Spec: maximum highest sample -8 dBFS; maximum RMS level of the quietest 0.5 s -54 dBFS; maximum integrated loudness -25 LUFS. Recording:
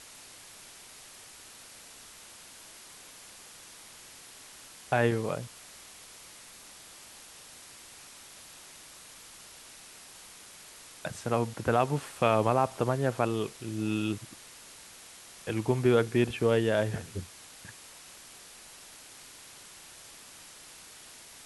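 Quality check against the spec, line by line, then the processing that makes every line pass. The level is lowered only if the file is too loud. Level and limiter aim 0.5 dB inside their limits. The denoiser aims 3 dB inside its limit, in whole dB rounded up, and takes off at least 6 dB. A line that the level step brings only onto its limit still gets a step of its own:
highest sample -10.0 dBFS: OK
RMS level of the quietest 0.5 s -50 dBFS: fail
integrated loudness -29.0 LUFS: OK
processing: denoiser 7 dB, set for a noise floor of -50 dBFS

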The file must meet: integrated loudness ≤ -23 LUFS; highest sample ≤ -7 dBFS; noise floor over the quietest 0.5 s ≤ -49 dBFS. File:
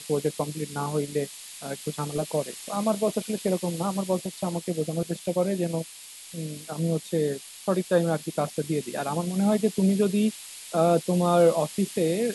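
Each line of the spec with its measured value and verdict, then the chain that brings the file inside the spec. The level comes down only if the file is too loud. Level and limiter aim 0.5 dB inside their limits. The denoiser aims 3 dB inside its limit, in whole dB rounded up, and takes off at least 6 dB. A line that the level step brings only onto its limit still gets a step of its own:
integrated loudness -27.0 LUFS: OK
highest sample -8.5 dBFS: OK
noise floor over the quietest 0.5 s -44 dBFS: fail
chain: denoiser 8 dB, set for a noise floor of -44 dBFS

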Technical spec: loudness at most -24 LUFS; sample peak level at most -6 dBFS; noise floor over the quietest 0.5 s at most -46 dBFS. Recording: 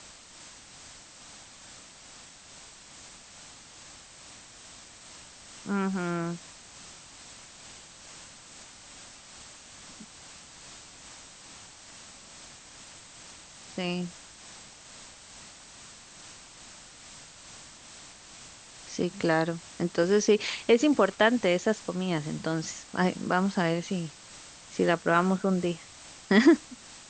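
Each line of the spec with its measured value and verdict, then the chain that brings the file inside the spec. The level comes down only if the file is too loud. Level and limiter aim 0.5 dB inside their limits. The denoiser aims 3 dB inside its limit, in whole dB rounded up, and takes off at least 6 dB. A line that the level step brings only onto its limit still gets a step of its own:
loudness -27.0 LUFS: OK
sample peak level -9.0 dBFS: OK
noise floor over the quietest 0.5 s -50 dBFS: OK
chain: none

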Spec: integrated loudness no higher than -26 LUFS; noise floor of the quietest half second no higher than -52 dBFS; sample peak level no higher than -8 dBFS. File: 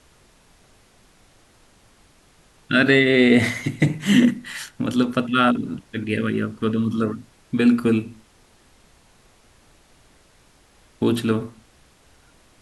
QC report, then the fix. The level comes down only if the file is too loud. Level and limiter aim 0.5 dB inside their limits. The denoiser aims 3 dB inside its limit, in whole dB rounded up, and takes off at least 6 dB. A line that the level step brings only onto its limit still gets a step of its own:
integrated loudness -20.5 LUFS: fail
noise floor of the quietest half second -55 dBFS: OK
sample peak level -4.5 dBFS: fail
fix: gain -6 dB

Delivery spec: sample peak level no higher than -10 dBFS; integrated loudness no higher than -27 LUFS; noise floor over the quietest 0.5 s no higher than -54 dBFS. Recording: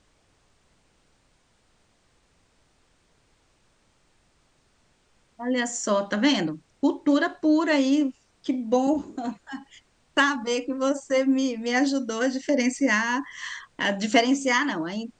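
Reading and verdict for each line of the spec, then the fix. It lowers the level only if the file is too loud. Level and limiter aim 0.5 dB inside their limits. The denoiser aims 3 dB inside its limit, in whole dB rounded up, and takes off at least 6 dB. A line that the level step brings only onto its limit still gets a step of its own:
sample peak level -7.0 dBFS: fail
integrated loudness -24.5 LUFS: fail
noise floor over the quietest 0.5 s -65 dBFS: OK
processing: gain -3 dB; limiter -10.5 dBFS

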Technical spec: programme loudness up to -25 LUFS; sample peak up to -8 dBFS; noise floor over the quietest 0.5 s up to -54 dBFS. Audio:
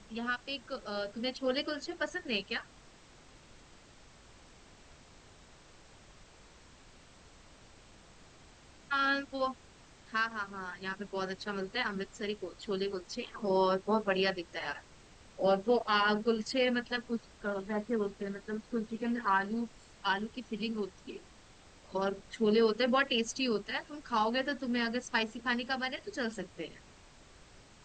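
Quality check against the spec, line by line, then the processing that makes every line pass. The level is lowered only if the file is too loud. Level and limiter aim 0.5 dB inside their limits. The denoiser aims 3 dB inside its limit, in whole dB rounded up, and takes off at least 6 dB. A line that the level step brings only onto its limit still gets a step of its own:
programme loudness -33.5 LUFS: OK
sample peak -16.5 dBFS: OK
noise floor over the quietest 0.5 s -57 dBFS: OK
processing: none

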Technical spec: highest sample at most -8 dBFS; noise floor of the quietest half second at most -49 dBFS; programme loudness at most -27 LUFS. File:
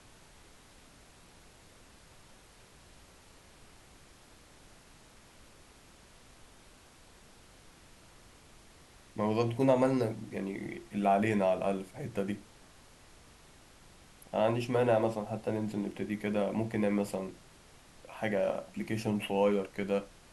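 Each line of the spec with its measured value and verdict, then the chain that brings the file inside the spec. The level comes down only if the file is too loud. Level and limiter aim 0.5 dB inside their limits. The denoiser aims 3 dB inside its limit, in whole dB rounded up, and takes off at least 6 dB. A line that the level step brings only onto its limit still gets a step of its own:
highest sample -14.5 dBFS: OK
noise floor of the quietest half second -58 dBFS: OK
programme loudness -32.0 LUFS: OK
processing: none

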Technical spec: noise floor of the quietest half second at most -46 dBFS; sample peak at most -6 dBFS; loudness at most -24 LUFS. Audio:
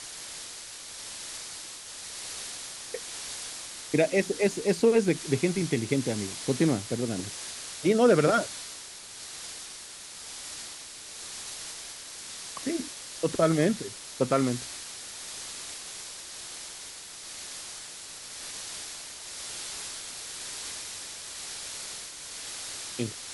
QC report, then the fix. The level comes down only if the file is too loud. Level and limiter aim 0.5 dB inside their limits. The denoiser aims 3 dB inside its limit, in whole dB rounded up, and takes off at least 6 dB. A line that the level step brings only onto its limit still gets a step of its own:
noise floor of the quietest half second -44 dBFS: fail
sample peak -10.0 dBFS: OK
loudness -31.0 LUFS: OK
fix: denoiser 6 dB, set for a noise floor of -44 dBFS

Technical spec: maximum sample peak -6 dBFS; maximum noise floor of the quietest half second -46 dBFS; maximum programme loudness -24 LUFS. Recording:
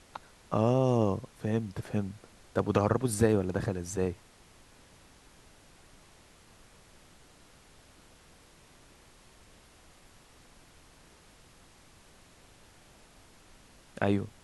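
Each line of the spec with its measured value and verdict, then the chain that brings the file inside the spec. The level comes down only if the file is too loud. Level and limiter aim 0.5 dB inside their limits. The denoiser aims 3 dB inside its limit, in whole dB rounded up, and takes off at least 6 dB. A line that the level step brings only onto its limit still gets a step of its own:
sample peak -10.0 dBFS: OK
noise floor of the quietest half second -58 dBFS: OK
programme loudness -30.0 LUFS: OK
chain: none

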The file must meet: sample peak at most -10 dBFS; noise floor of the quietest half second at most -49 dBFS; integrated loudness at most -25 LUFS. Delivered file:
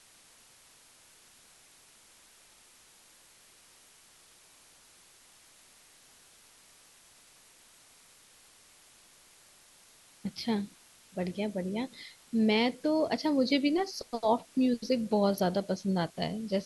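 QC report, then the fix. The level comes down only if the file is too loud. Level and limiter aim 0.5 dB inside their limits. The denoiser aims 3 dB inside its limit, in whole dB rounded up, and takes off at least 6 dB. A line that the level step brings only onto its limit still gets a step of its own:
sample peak -14.5 dBFS: OK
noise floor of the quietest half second -59 dBFS: OK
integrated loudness -30.5 LUFS: OK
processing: none

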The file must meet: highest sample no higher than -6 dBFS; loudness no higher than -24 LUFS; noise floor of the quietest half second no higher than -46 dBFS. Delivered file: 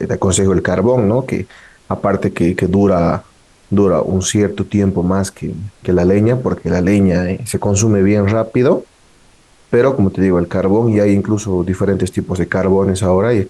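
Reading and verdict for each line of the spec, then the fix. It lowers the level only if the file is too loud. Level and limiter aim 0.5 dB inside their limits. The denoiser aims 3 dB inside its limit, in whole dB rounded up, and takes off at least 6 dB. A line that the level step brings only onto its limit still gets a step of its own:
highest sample -3.0 dBFS: fail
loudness -15.0 LUFS: fail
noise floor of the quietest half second -48 dBFS: OK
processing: gain -9.5 dB

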